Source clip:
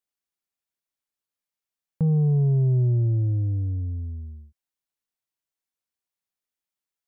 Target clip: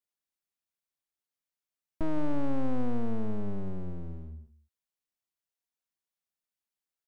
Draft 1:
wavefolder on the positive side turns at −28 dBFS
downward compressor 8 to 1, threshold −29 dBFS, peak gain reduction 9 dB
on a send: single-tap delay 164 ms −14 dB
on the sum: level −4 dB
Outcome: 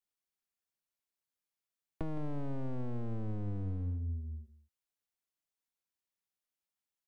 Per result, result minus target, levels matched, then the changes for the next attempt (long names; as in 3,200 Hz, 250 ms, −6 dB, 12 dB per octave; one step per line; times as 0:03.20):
downward compressor: peak gain reduction +9 dB; wavefolder on the positive side: distortion −13 dB
remove: downward compressor 8 to 1, threshold −29 dBFS, peak gain reduction 9 dB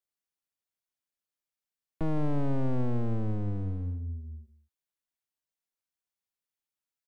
wavefolder on the positive side: distortion −13 dB
change: wavefolder on the positive side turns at −38 dBFS